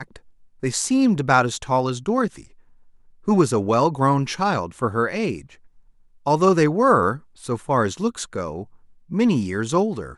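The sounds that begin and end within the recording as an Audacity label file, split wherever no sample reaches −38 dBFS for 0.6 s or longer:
3.280000	5.540000	sound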